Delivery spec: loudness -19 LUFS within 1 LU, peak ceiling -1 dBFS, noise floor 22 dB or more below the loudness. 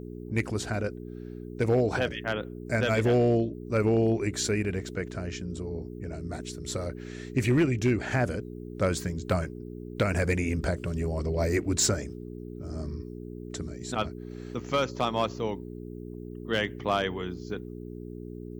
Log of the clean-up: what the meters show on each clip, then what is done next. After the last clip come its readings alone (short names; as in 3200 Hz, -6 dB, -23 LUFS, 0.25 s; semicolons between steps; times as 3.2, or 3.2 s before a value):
clipped 0.3%; flat tops at -17.0 dBFS; hum 60 Hz; harmonics up to 420 Hz; hum level -37 dBFS; loudness -29.0 LUFS; peak -17.0 dBFS; loudness target -19.0 LUFS
-> clip repair -17 dBFS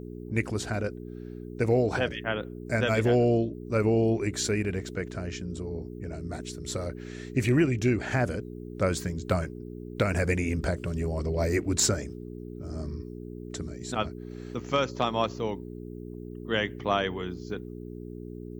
clipped 0.0%; hum 60 Hz; harmonics up to 420 Hz; hum level -37 dBFS
-> de-hum 60 Hz, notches 7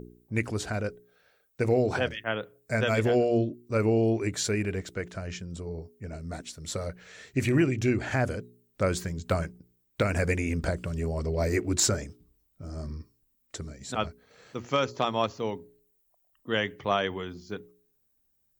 hum none; loudness -29.0 LUFS; peak -9.5 dBFS; loudness target -19.0 LUFS
-> gain +10 dB; limiter -1 dBFS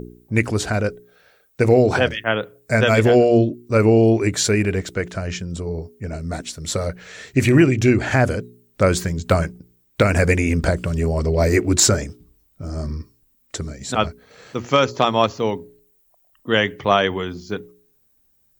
loudness -19.0 LUFS; peak -1.0 dBFS; noise floor -62 dBFS